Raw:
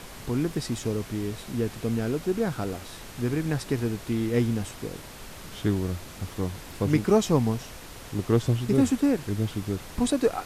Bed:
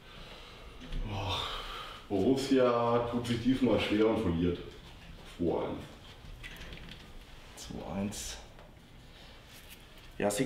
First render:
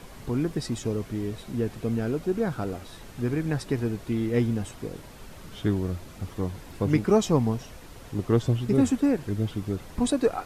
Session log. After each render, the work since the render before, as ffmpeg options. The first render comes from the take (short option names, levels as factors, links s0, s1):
-af "afftdn=nr=7:nf=-43"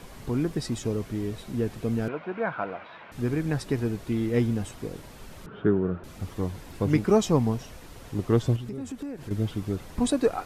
-filter_complex "[0:a]asettb=1/sr,asplit=3[s0][s1][s2];[s0]atrim=end=2.084[s3];[s1]atrim=start=2.08:end=3.12,asetpts=PTS-STARTPTS,afade=t=in:d=0.004:c=qsin,afade=t=out:st=1.036:d=0.004:c=qsin,highpass=250,equalizer=f=260:t=q:w=4:g=-8,equalizer=f=390:t=q:w=4:g=-8,equalizer=f=650:t=q:w=4:g=5,equalizer=f=1000:t=q:w=4:g=8,equalizer=f=1500:t=q:w=4:g=7,equalizer=f=2300:t=q:w=4:g=7,lowpass=f=3100:w=0.5412,lowpass=f=3100:w=1.3066[s4];[s2]atrim=start=3.116[s5];[s3][s4]acrossfade=d=0.004:c1=hsin:c2=qsin[s6];[s6][s5]acrossfade=d=0.004:c1=qsin:c2=hsin,asettb=1/sr,asplit=3[s7][s8][s9];[s7]atrim=end=5.464[s10];[s8]atrim=start=5.46:end=6.04,asetpts=PTS-STARTPTS,afade=t=in:d=0.004:c=qsin,afade=t=out:st=0.576:d=0.004:c=qsin,highpass=120,equalizer=f=170:t=q:w=4:g=6,equalizer=f=410:t=q:w=4:g=9,equalizer=f=1400:t=q:w=4:g=9,equalizer=f=2100:t=q:w=4:g=-9,lowpass=f=2400:w=0.5412,lowpass=f=2400:w=1.3066[s11];[s9]atrim=start=6.036[s12];[s10][s11]acrossfade=d=0.004:c1=hsin:c2=qsin[s13];[s13][s12]acrossfade=d=0.004:c1=qsin:c2=hsin,asettb=1/sr,asplit=3[s14][s15][s16];[s14]atrim=end=8.564[s17];[s15]atrim=start=8.56:end=9.31,asetpts=PTS-STARTPTS,afade=t=in:d=0.004:c=qsin,afade=t=out:st=0.746:d=0.004:c=qsin,acompressor=threshold=0.0224:ratio=5:attack=3.2:release=140:knee=1:detection=peak[s18];[s16]atrim=start=9.306[s19];[s17][s18]acrossfade=d=0.004:c1=hsin:c2=qsin[s20];[s20][s19]acrossfade=d=0.004:c1=qsin:c2=hsin"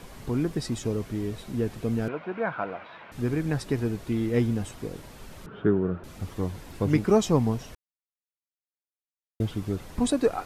-filter_complex "[0:a]asplit=3[s0][s1][s2];[s0]atrim=end=7.75,asetpts=PTS-STARTPTS,afade=t=out:st=7.746:d=0.004:c=hsin[s3];[s1]atrim=start=7.75:end=9.4,asetpts=PTS-STARTPTS,volume=0[s4];[s2]atrim=start=9.4,asetpts=PTS-STARTPTS,afade=t=in:d=0.004:c=hsin[s5];[s3][s4][s5]concat=n=3:v=0:a=1"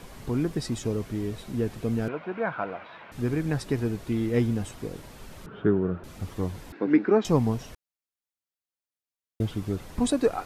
-filter_complex "[0:a]asettb=1/sr,asplit=3[s0][s1][s2];[s0]atrim=end=6.724[s3];[s1]atrim=start=6.72:end=7.25,asetpts=PTS-STARTPTS,afade=t=in:d=0.004:c=qsin,afade=t=out:st=0.526:d=0.004:c=qsin,highpass=f=230:w=0.5412,highpass=f=230:w=1.3066,equalizer=f=300:t=q:w=4:g=6,equalizer=f=620:t=q:w=4:g=-4,equalizer=f=1100:t=q:w=4:g=-4,equalizer=f=1600:t=q:w=4:g=7,equalizer=f=3100:t=q:w=4:g=-9,lowpass=f=3400:w=0.5412,lowpass=f=3400:w=1.3066[s4];[s2]atrim=start=7.246[s5];[s3][s4]acrossfade=d=0.004:c1=hsin:c2=qsin[s6];[s6][s5]acrossfade=d=0.004:c1=qsin:c2=hsin"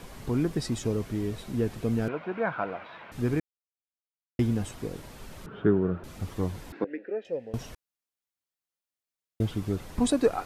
-filter_complex "[0:a]asettb=1/sr,asplit=3[s0][s1][s2];[s0]atrim=end=6.844[s3];[s1]atrim=start=6.84:end=7.54,asetpts=PTS-STARTPTS,afade=t=in:d=0.004:c=qsin,afade=t=out:st=0.696:d=0.004:c=qsin,asplit=3[s4][s5][s6];[s4]bandpass=f=530:t=q:w=8,volume=1[s7];[s5]bandpass=f=1840:t=q:w=8,volume=0.501[s8];[s6]bandpass=f=2480:t=q:w=8,volume=0.355[s9];[s7][s8][s9]amix=inputs=3:normalize=0[s10];[s2]atrim=start=7.536[s11];[s3][s10]acrossfade=d=0.004:c1=hsin:c2=qsin[s12];[s12][s11]acrossfade=d=0.004:c1=qsin:c2=hsin,asplit=3[s13][s14][s15];[s13]atrim=end=3.4,asetpts=PTS-STARTPTS,afade=t=out:st=3.396:d=0.004:c=hsin[s16];[s14]atrim=start=3.4:end=4.39,asetpts=PTS-STARTPTS,volume=0[s17];[s15]atrim=start=4.39,asetpts=PTS-STARTPTS,afade=t=in:d=0.004:c=hsin[s18];[s16][s17][s18]concat=n=3:v=0:a=1"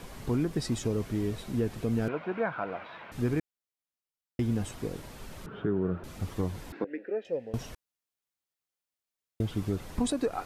-af "alimiter=limit=0.106:level=0:latency=1:release=172"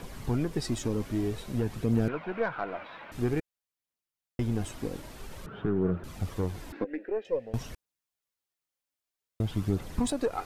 -af "aeval=exprs='0.112*(cos(1*acos(clip(val(0)/0.112,-1,1)))-cos(1*PI/2))+0.00708*(cos(4*acos(clip(val(0)/0.112,-1,1)))-cos(4*PI/2))':c=same,aphaser=in_gain=1:out_gain=1:delay=3.9:decay=0.3:speed=0.51:type=triangular"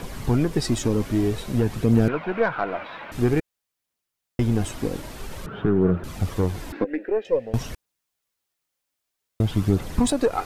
-af "volume=2.51"